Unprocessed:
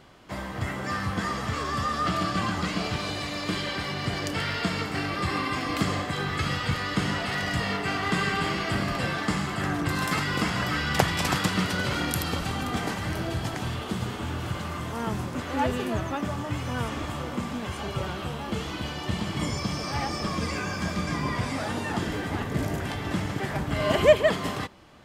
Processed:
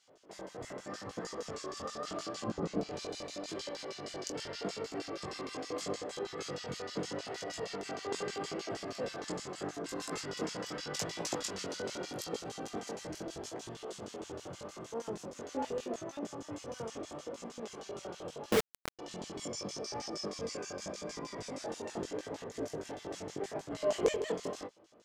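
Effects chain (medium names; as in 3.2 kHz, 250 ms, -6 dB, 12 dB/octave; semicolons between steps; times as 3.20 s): 2.46–2.89 s: tilt EQ -3.5 dB/octave; LFO band-pass square 6.4 Hz 470–6400 Hz; chorus 0.8 Hz, delay 17.5 ms, depth 5.2 ms; 18.52–18.99 s: companded quantiser 2-bit; trim +3 dB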